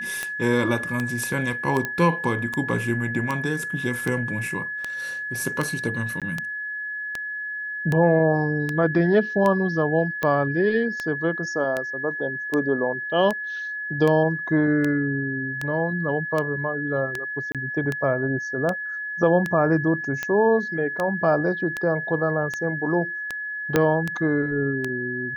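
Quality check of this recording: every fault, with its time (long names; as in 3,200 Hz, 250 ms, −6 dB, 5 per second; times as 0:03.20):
scratch tick 78 rpm −12 dBFS
whistle 1,700 Hz −28 dBFS
0:01.85: click −12 dBFS
0:06.20–0:06.22: drop-out 17 ms
0:17.52–0:17.55: drop-out 27 ms
0:23.76: click −5 dBFS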